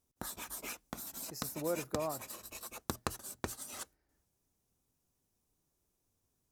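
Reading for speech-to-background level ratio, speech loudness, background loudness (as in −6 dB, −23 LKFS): 2.5 dB, −40.5 LKFS, −43.0 LKFS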